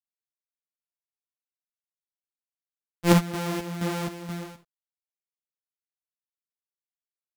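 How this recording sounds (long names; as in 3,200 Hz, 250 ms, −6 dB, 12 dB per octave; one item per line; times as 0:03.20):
a buzz of ramps at a fixed pitch in blocks of 256 samples
chopped level 2.1 Hz, depth 60%, duty 55%
a quantiser's noise floor 12 bits, dither none
a shimmering, thickened sound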